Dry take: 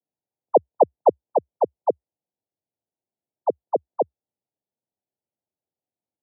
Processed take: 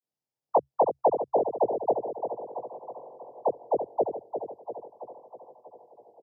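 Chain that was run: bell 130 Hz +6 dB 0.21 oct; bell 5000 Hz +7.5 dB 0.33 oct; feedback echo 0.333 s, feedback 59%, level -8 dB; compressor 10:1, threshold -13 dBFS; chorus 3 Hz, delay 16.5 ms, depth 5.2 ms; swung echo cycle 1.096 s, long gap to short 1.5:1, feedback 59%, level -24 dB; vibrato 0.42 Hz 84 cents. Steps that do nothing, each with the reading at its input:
bell 5000 Hz: input band ends at 1100 Hz

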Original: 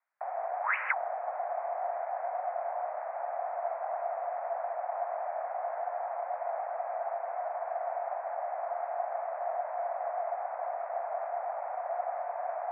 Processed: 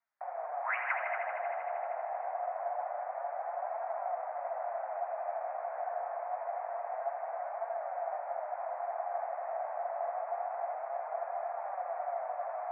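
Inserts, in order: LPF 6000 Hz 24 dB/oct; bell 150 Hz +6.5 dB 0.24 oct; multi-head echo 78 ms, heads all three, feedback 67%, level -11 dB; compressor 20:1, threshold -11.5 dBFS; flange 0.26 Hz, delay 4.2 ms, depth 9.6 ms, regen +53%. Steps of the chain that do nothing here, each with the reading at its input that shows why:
LPF 6000 Hz: input band ends at 1700 Hz; bell 150 Hz: input band starts at 480 Hz; compressor, threshold -11.5 dBFS: input peak -14.5 dBFS

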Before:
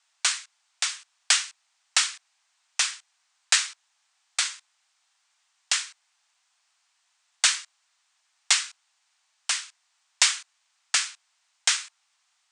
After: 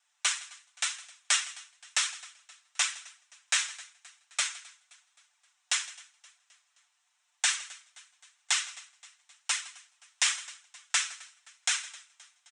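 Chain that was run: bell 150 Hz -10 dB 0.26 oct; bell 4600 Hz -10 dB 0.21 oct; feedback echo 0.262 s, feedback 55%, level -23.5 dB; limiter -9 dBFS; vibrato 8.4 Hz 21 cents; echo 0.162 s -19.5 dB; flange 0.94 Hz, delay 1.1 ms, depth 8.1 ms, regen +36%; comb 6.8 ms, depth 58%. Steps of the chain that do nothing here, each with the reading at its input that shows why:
bell 150 Hz: input band starts at 540 Hz

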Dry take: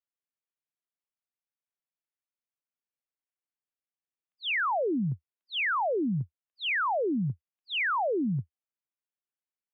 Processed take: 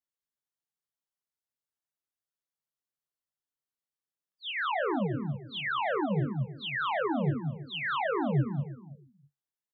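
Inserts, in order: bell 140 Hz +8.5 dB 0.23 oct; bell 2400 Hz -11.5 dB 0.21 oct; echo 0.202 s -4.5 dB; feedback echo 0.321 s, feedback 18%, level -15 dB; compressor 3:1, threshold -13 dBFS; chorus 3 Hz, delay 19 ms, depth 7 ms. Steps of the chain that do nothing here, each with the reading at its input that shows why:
compressor, threshold -13 dBFS: input peak -15.5 dBFS

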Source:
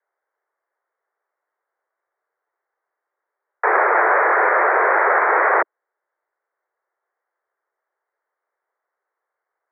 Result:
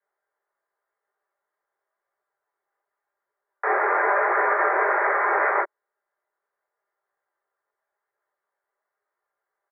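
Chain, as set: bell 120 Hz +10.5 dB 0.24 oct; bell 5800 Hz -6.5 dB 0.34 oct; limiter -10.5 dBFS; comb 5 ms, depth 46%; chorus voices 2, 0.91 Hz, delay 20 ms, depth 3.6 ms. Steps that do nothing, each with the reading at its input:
bell 120 Hz: input band starts at 290 Hz; bell 5800 Hz: input band ends at 2600 Hz

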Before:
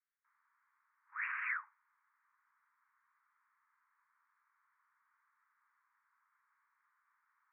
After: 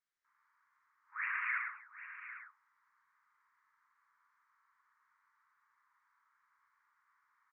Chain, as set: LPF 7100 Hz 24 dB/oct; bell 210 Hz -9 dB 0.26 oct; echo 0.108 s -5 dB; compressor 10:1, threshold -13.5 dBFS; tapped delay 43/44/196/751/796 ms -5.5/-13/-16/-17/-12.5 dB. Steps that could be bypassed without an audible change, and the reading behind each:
LPF 7100 Hz: input band ends at 2900 Hz; bell 210 Hz: input band starts at 810 Hz; compressor, threshold -13.5 dBFS: input peak -26.5 dBFS

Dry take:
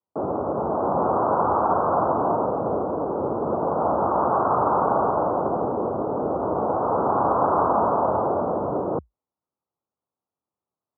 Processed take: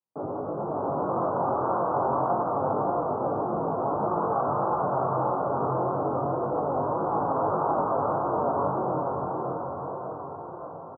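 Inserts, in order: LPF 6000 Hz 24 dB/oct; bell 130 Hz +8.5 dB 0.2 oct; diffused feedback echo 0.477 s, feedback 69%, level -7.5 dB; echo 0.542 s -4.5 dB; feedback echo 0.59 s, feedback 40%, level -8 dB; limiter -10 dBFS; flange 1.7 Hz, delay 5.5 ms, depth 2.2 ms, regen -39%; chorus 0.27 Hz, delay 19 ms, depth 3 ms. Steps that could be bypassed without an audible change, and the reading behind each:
LPF 6000 Hz: input band ends at 1600 Hz

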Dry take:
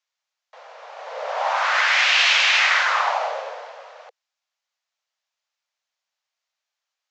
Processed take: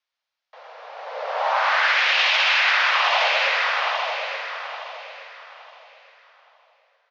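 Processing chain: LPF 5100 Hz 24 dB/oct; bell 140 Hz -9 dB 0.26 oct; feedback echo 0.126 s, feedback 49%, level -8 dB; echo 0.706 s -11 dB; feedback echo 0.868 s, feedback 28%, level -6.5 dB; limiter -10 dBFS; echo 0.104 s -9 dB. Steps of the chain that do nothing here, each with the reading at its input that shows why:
bell 140 Hz: input band starts at 400 Hz

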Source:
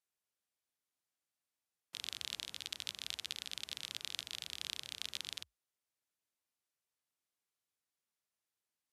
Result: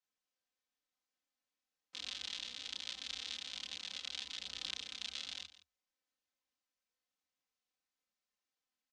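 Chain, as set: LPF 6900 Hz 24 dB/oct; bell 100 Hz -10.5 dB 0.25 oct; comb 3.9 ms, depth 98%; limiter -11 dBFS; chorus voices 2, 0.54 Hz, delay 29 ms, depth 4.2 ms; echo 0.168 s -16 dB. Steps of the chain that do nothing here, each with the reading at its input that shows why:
limiter -11 dBFS: input peak -17.5 dBFS

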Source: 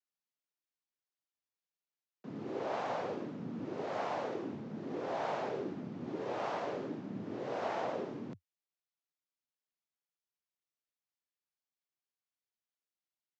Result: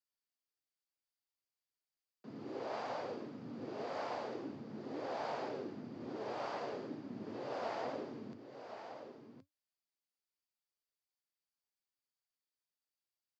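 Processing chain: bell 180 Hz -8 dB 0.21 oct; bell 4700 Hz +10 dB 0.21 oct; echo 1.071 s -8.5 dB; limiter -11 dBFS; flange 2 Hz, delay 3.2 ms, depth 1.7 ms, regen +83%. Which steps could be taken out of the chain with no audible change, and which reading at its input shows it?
limiter -11 dBFS: input peak -23.0 dBFS

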